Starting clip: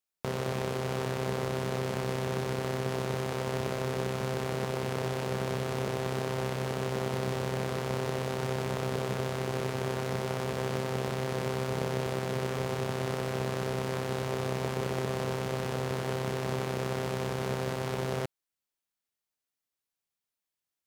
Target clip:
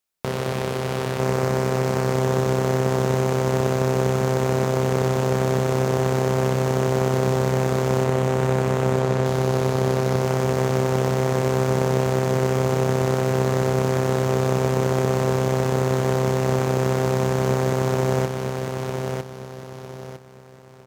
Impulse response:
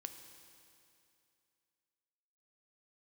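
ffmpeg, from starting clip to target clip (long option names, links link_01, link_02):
-filter_complex "[0:a]asettb=1/sr,asplit=3[link_01][link_02][link_03];[link_01]atrim=end=8.044[link_04];[link_02]atrim=start=8.04:end=9.26,asetpts=PTS-STARTPTS,afade=type=in:duration=0.004:curve=qsin,afade=type=out:start_time=1.216:duration=0.004:curve=qsin,highshelf=frequency=8200:gain=-11.5[link_05];[link_03]atrim=start=9.256[link_06];[link_04][link_05]acrossfade=duration=0.004:curve1=hsin:curve2=qsin[link_07];[link_07][link_06]acrossfade=duration=0.004:curve1=qsin:curve2=hsin,aecho=1:1:954|1908|2862|3816:0.631|0.215|0.0729|0.0248,volume=7dB"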